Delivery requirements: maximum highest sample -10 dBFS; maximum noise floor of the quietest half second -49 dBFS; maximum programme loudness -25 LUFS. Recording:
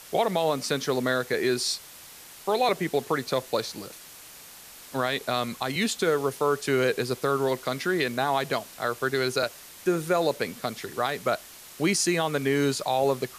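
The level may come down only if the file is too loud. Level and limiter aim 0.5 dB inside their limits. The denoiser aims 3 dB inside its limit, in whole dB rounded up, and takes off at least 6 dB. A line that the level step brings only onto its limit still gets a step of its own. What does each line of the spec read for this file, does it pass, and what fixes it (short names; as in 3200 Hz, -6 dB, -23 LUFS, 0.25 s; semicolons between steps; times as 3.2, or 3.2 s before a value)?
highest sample -12.5 dBFS: OK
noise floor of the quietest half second -47 dBFS: fail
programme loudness -27.0 LUFS: OK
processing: denoiser 6 dB, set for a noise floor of -47 dBFS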